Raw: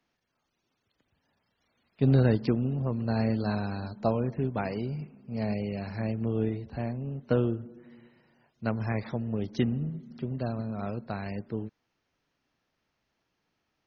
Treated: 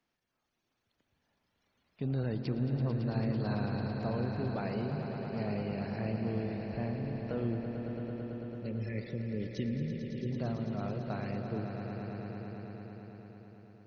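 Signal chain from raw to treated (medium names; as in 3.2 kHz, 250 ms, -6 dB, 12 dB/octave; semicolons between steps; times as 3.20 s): peak limiter -22 dBFS, peak gain reduction 8.5 dB; time-frequency box 7.86–10.31 s, 590–1700 Hz -27 dB; echo with a slow build-up 111 ms, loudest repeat 5, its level -10 dB; trim -4.5 dB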